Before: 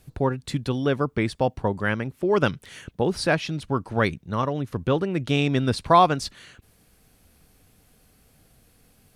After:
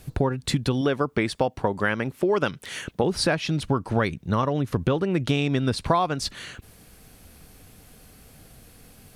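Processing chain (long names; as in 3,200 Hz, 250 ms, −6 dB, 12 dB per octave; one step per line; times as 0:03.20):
0:00.81–0:03.04: low-shelf EQ 170 Hz −9.5 dB
downward compressor 6 to 1, threshold −28 dBFS, peak gain reduction 16.5 dB
level +8.5 dB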